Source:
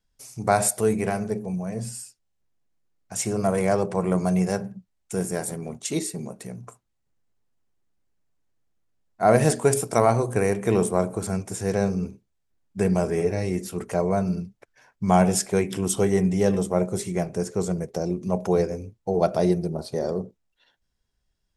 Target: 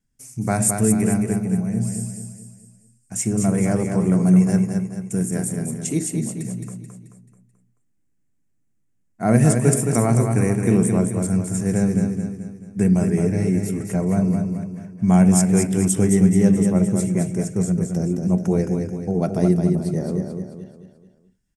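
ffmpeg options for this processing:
-filter_complex "[0:a]equalizer=f=125:t=o:w=1:g=8,equalizer=f=250:t=o:w=1:g=10,equalizer=f=500:t=o:w=1:g=-4,equalizer=f=1000:t=o:w=1:g=-5,equalizer=f=2000:t=o:w=1:g=4,equalizer=f=4000:t=o:w=1:g=-9,equalizer=f=8000:t=o:w=1:g=8,asplit=2[s0][s1];[s1]aecho=0:1:217|434|651|868|1085:0.531|0.239|0.108|0.0484|0.0218[s2];[s0][s2]amix=inputs=2:normalize=0,volume=0.794"

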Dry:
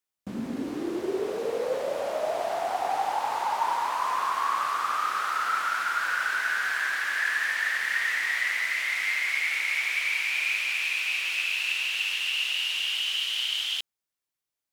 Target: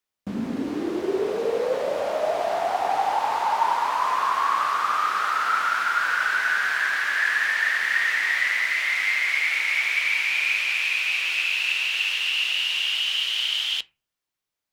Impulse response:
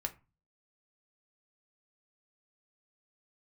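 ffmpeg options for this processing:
-filter_complex "[0:a]asplit=2[s0][s1];[1:a]atrim=start_sample=2205,lowpass=6900[s2];[s1][s2]afir=irnorm=-1:irlink=0,volume=0.708[s3];[s0][s3]amix=inputs=2:normalize=0"

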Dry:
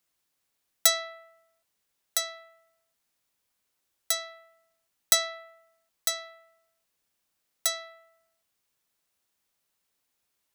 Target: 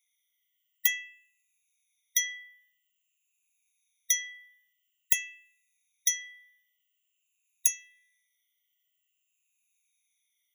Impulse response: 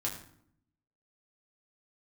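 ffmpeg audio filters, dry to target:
-af "afftfilt=real='re*pow(10,19/40*sin(2*PI*(1.4*log(max(b,1)*sr/1024/100)/log(2)-(-0.49)*(pts-256)/sr)))':imag='im*pow(10,19/40*sin(2*PI*(1.4*log(max(b,1)*sr/1024/100)/log(2)-(-0.49)*(pts-256)/sr)))':win_size=1024:overlap=0.75,afftfilt=real='re*eq(mod(floor(b*sr/1024/1900),2),1)':imag='im*eq(mod(floor(b*sr/1024/1900),2),1)':win_size=1024:overlap=0.75"

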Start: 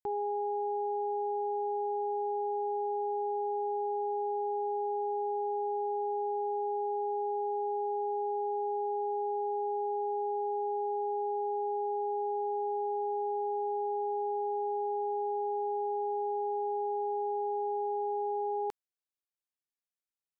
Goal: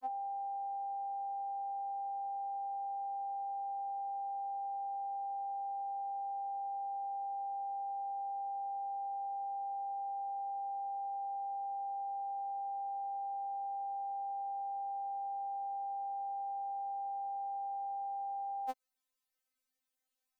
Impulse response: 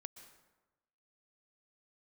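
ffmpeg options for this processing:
-filter_complex "[0:a]acrossover=split=310|620[s0][s1][s2];[s0]acompressor=threshold=0.00224:ratio=4[s3];[s1]acompressor=threshold=0.0112:ratio=4[s4];[s2]acompressor=threshold=0.00708:ratio=4[s5];[s3][s4][s5]amix=inputs=3:normalize=0,aeval=exprs='val(0)*sin(2*PI*28*n/s)':c=same,afftfilt=real='re*3.46*eq(mod(b,12),0)':imag='im*3.46*eq(mod(b,12),0)':win_size=2048:overlap=0.75,volume=3.98"

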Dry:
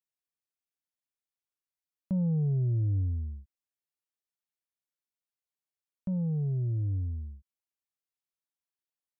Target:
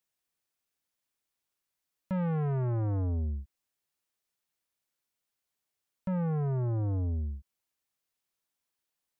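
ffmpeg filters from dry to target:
-af "asoftclip=type=tanh:threshold=0.015,volume=2.51"

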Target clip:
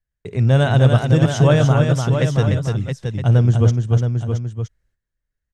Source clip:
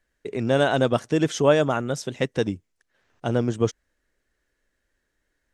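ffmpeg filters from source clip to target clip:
-filter_complex "[0:a]lowshelf=f=190:t=q:w=1.5:g=12.5,asplit=2[s0][s1];[s1]aecho=0:1:296:0.562[s2];[s0][s2]amix=inputs=2:normalize=0,agate=range=0.126:threshold=0.002:ratio=16:detection=peak,asplit=2[s3][s4];[s4]aecho=0:1:54|672:0.1|0.447[s5];[s3][s5]amix=inputs=2:normalize=0,volume=1.12"

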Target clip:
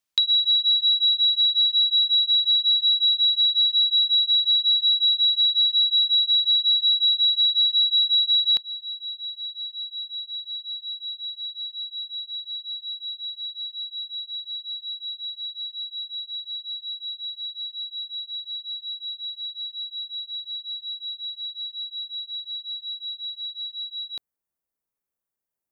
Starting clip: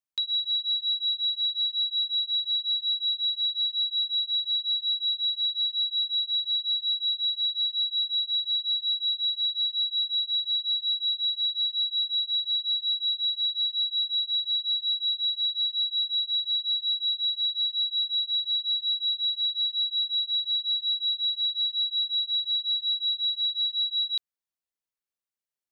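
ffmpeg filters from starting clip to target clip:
-af "asetnsamples=n=441:p=0,asendcmd='8.57 equalizer g -14',equalizer=f=3800:w=0.57:g=4,acompressor=threshold=0.0501:ratio=4,volume=2.51"

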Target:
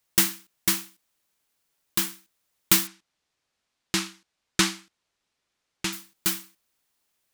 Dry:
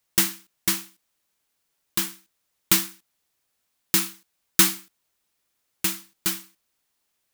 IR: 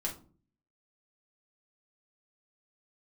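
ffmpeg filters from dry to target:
-filter_complex "[0:a]asettb=1/sr,asplit=3[s0][s1][s2];[s0]atrim=end=2.874[s3];[s1]atrim=start=2.87:end=5.93,asetpts=PTS-STARTPTS,afade=t=in:d=0.004:c=qsin,afade=t=out:st=3.056:d=0.004:c=qsin,lowpass=6000[s4];[s2]atrim=start=5.926[s5];[s3][s4]acrossfade=d=0.004:c1=hsin:c2=qsin[s6];[s6][s5]acrossfade=d=0.004:c1=qsin:c2=hsin"

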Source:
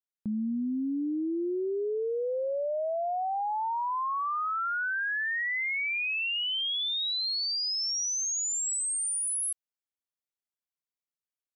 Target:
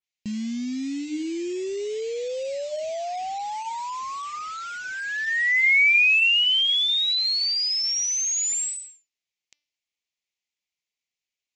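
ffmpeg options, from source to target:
-af "aresample=16000,acrusher=bits=5:mode=log:mix=0:aa=0.000001,aresample=44100,highshelf=f=1800:t=q:w=3:g=7,bandreject=f=294.8:t=h:w=4,bandreject=f=589.6:t=h:w=4,bandreject=f=884.4:t=h:w=4,bandreject=f=1179.2:t=h:w=4,bandreject=f=1474:t=h:w=4,bandreject=f=1768.8:t=h:w=4,bandreject=f=2063.6:t=h:w=4,bandreject=f=2358.4:t=h:w=4,bandreject=f=2653.2:t=h:w=4,bandreject=f=2948:t=h:w=4,bandreject=f=3242.8:t=h:w=4,bandreject=f=3537.6:t=h:w=4,bandreject=f=3832.4:t=h:w=4,bandreject=f=4127.2:t=h:w=4,bandreject=f=4422:t=h:w=4,bandreject=f=4716.8:t=h:w=4,bandreject=f=5011.6:t=h:w=4,bandreject=f=5306.4:t=h:w=4,bandreject=f=5601.2:t=h:w=4,bandreject=f=5896:t=h:w=4,adynamicequalizer=threshold=0.0355:dfrequency=3200:dqfactor=0.7:tfrequency=3200:tqfactor=0.7:attack=5:release=100:ratio=0.375:range=2:mode=cutabove:tftype=highshelf,volume=1.19"

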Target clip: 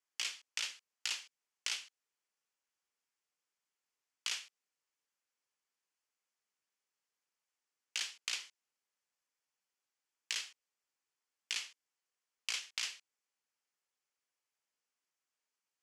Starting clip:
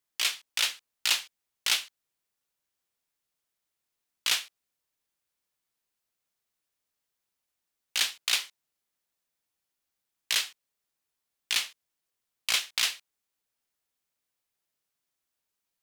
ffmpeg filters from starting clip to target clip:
-filter_complex "[0:a]acrossover=split=480|2200[s0][s1][s2];[s0]acompressor=threshold=0.001:ratio=4[s3];[s1]acompressor=threshold=0.00398:ratio=4[s4];[s2]acompressor=threshold=0.0282:ratio=4[s5];[s3][s4][s5]amix=inputs=3:normalize=0,highpass=320,equalizer=f=340:t=q:w=4:g=-4,equalizer=f=650:t=q:w=4:g=-5,equalizer=f=3800:t=q:w=4:g=-7,equalizer=f=9100:t=q:w=4:g=-7,lowpass=f=9500:w=0.5412,lowpass=f=9500:w=1.3066,volume=0.75"

